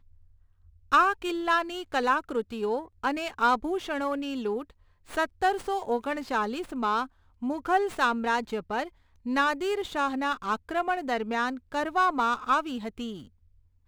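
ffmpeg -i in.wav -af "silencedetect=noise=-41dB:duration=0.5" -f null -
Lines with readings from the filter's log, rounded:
silence_start: 0.00
silence_end: 0.92 | silence_duration: 0.92
silence_start: 13.23
silence_end: 13.88 | silence_duration: 0.65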